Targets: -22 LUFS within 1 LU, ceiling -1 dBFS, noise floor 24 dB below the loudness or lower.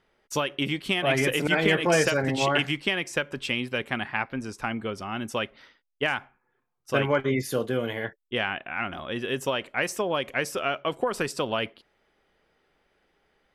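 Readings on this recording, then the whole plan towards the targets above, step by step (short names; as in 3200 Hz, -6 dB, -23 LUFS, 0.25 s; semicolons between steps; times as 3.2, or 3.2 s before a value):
loudness -27.0 LUFS; peak -7.5 dBFS; loudness target -22.0 LUFS
-> gain +5 dB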